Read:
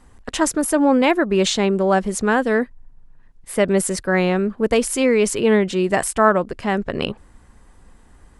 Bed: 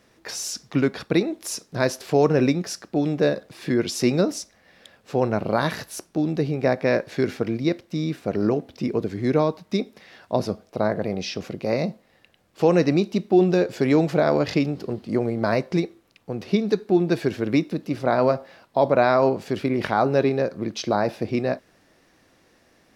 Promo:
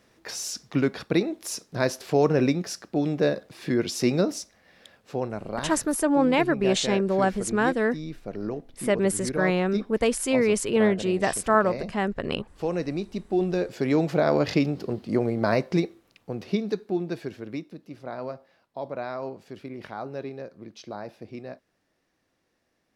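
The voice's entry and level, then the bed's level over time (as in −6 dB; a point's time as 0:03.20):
5.30 s, −5.5 dB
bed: 0:04.94 −2.5 dB
0:05.35 −10 dB
0:12.95 −10 dB
0:14.45 −1 dB
0:16.11 −1 dB
0:17.74 −15 dB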